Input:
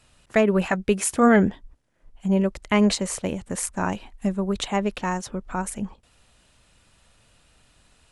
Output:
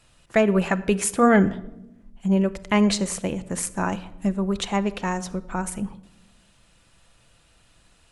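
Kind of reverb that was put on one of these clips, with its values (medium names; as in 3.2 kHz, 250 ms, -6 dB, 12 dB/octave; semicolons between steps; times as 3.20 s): simulated room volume 3100 m³, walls furnished, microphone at 0.76 m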